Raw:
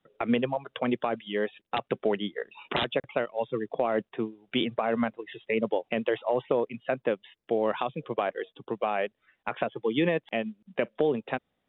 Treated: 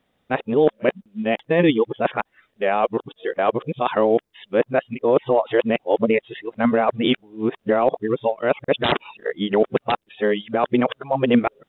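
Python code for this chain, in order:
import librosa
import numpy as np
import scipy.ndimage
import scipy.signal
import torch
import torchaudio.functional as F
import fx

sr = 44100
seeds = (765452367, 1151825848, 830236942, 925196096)

y = x[::-1].copy()
y = fx.dynamic_eq(y, sr, hz=2800.0, q=0.94, threshold_db=-47.0, ratio=4.0, max_db=-3)
y = y * 10.0 ** (9.0 / 20.0)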